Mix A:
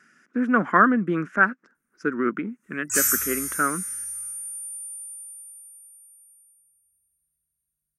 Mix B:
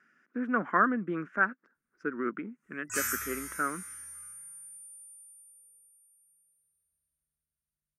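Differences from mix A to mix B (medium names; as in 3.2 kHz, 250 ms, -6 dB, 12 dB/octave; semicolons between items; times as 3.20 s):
speech -7.5 dB; master: add tone controls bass -4 dB, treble -13 dB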